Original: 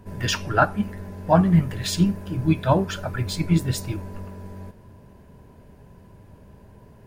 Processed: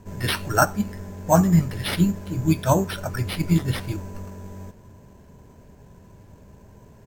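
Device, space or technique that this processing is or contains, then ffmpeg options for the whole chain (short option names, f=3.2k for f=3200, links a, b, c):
crushed at another speed: -af "asetrate=55125,aresample=44100,acrusher=samples=5:mix=1:aa=0.000001,asetrate=35280,aresample=44100"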